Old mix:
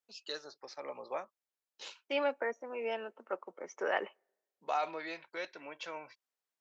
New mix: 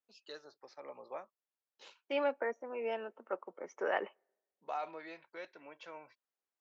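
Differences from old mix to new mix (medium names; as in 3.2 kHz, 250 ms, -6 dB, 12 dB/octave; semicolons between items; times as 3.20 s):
first voice -5.0 dB; master: add treble shelf 3 kHz -9 dB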